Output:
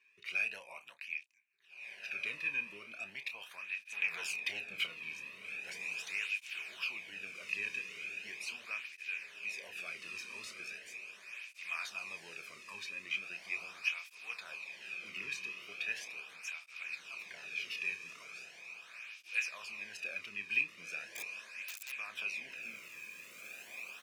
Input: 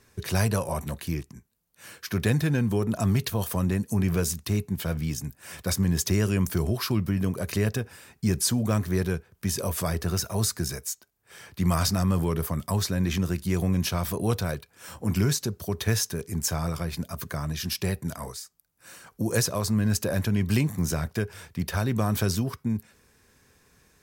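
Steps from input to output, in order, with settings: 3.84–4.86 sample leveller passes 3; band-pass 2500 Hz, Q 13; doubler 30 ms -10.5 dB; 21.04–21.94 wrapped overs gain 45.5 dB; diffused feedback echo 1.846 s, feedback 54%, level -6 dB; tape flanging out of phase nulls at 0.39 Hz, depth 1.5 ms; gain +10.5 dB

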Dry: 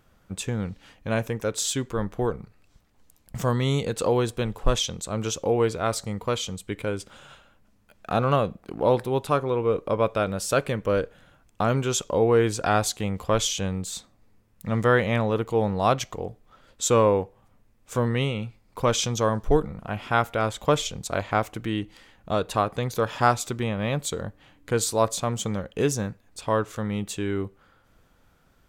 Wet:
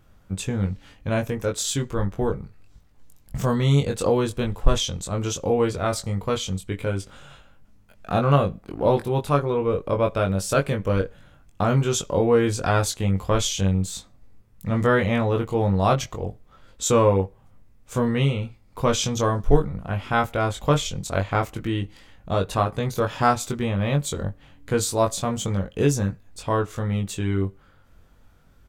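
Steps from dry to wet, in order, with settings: low shelf 140 Hz +9.5 dB; doubler 21 ms -4 dB; gain -1 dB

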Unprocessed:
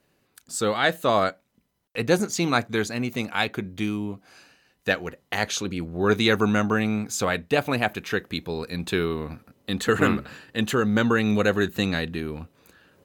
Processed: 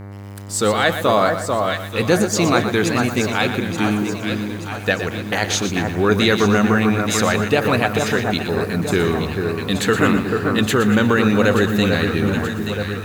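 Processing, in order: echo with dull and thin repeats by turns 0.439 s, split 1600 Hz, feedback 71%, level -6 dB; buzz 100 Hz, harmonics 23, -41 dBFS -7 dB/oct; 8.43–8.96 bell 3200 Hz -10 dB 0.88 oct; in parallel at +2 dB: limiter -15.5 dBFS, peak gain reduction 11 dB; on the sum: lo-fi delay 0.119 s, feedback 35%, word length 6-bit, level -9.5 dB

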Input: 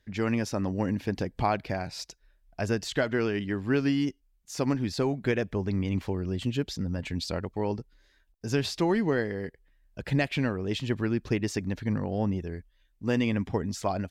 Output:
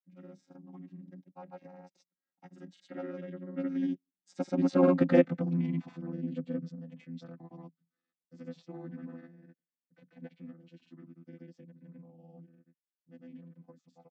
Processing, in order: chord vocoder bare fifth, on F3; Doppler pass-by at 5.14, 12 m/s, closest 2.5 m; dynamic EQ 880 Hz, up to +4 dB, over -55 dBFS, Q 0.73; grains, pitch spread up and down by 0 st; gain +9 dB

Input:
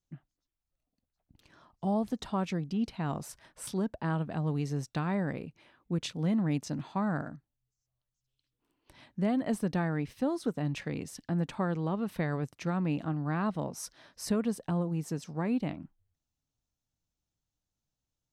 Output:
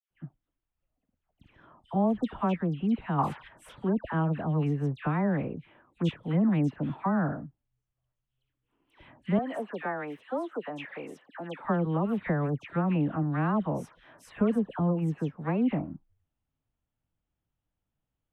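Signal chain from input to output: 9.28–11.54 HPF 490 Hz 12 dB/oct; dispersion lows, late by 0.108 s, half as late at 1800 Hz; 3.19–3.48 spectral gain 750–5100 Hz +12 dB; EQ curve 1200 Hz 0 dB, 3200 Hz -4 dB, 4600 Hz -25 dB, 7200 Hz -19 dB; gain +4 dB

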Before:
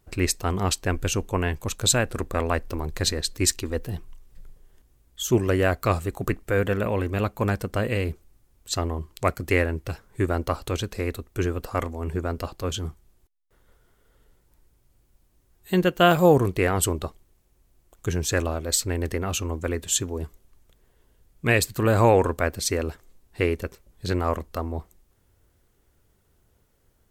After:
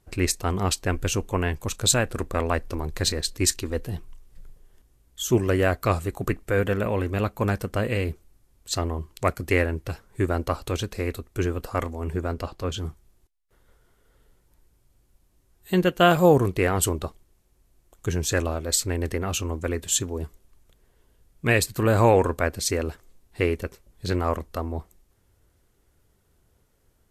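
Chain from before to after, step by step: 12.33–12.76 high shelf 11000 Hz -> 6500 Hz -10 dB; Vorbis 64 kbps 32000 Hz

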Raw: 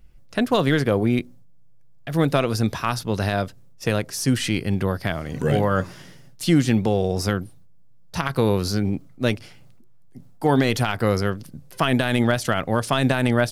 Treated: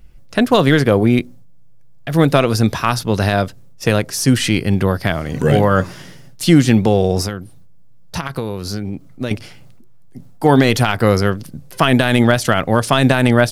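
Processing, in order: 7.22–9.31 compressor 8:1, threshold -27 dBFS, peak gain reduction 12.5 dB; gain +7 dB

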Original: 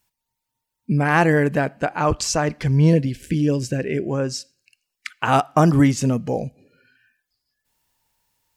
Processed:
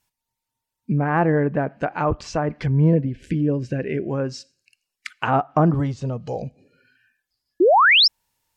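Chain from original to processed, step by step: treble ducked by the level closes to 1300 Hz, closed at -16 dBFS; 5.74–6.42 graphic EQ 250/2000/4000/8000 Hz -11/-8/+11/+11 dB; 7.6–8.08 painted sound rise 320–5600 Hz -12 dBFS; gain -1.5 dB

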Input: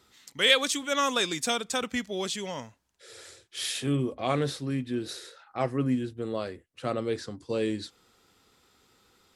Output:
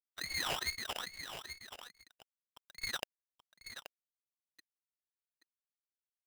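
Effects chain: time blur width 0.57 s; HPF 110 Hz 6 dB/oct; notches 60/120/180/240/300/360/420/480 Hz; comb 2.4 ms, depth 40%; dynamic EQ 250 Hz, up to -5 dB, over -56 dBFS, Q 6.3; in parallel at +2.5 dB: compressor 12:1, threshold -43 dBFS, peak gain reduction 14.5 dB; on the sum: bit-crush 4-bit; wah 1.6 Hz 210–1800 Hz, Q 7.9; time stretch by phase-locked vocoder 0.67×; on a send: echo 0.829 s -10 dB; on the sum: inverted band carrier 3500 Hz; polarity switched at an audio rate 1100 Hz; gain +16 dB

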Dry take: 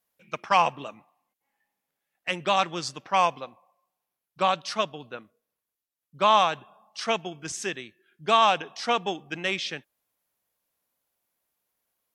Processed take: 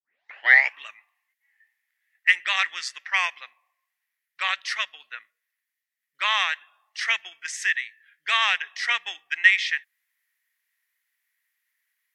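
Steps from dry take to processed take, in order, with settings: tape start at the beginning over 0.76 s; resonant high-pass 1900 Hz, resonance Q 9.3

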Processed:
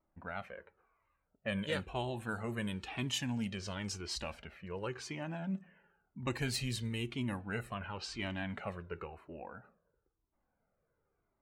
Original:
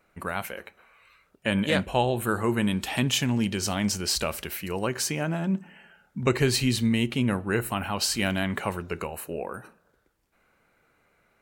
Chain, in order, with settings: low-pass opened by the level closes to 860 Hz, open at -19.5 dBFS; 7.74–8.49 air absorption 77 m; cascading flanger falling 0.97 Hz; gain -7 dB

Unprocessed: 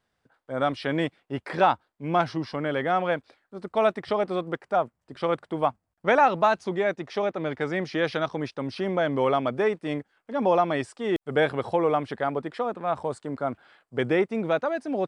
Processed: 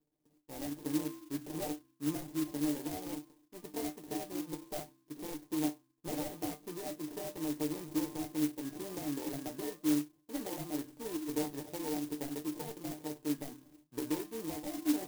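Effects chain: CVSD 64 kbps; de-hum 65.83 Hz, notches 5; compressor 3:1, threshold -30 dBFS, peak gain reduction 11.5 dB; sample-and-hold 32×; flange 1.2 Hz, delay 3.8 ms, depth 8 ms, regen -84%; resonator 150 Hz, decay 0.17 s, harmonics all, mix 90%; small resonant body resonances 310/4000 Hz, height 15 dB, ringing for 45 ms; clock jitter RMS 0.12 ms

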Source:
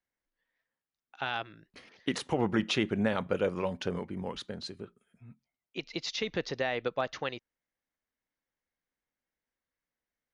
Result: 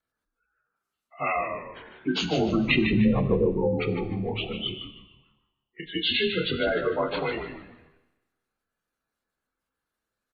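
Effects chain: inharmonic rescaling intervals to 89%; 2.68–3.49 low shelf 460 Hz +9 dB; 4.78–5.8 auto-wah 600–1300 Hz, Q 7.2, up, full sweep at -50 dBFS; doubler 27 ms -5 dB; spectral gate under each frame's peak -15 dB strong; compressor 4:1, threshold -28 dBFS, peak gain reduction 9 dB; on a send: frequency-shifting echo 0.151 s, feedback 37%, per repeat -83 Hz, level -7 dB; on the sum: dynamic EQ 3700 Hz, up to +7 dB, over -54 dBFS, Q 1.1; Schroeder reverb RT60 1.1 s, combs from 29 ms, DRR 11 dB; gain +7.5 dB

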